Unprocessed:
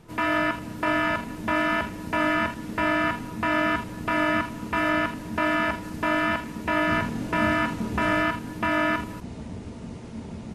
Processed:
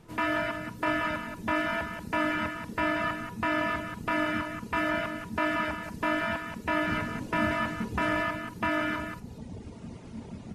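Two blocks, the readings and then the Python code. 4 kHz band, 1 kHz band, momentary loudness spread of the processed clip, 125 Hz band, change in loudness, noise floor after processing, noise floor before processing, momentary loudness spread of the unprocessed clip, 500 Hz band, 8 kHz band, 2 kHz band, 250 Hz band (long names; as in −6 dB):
−4.5 dB, −5.0 dB, 14 LU, −4.5 dB, −5.0 dB, −45 dBFS, −39 dBFS, 14 LU, −4.5 dB, −5.0 dB, −4.5 dB, −5.0 dB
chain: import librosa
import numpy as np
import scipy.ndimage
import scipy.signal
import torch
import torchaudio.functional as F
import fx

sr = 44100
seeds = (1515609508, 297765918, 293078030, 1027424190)

p1 = fx.dereverb_blind(x, sr, rt60_s=1.2)
p2 = p1 + fx.echo_single(p1, sr, ms=183, db=-7.5, dry=0)
y = p2 * librosa.db_to_amplitude(-3.0)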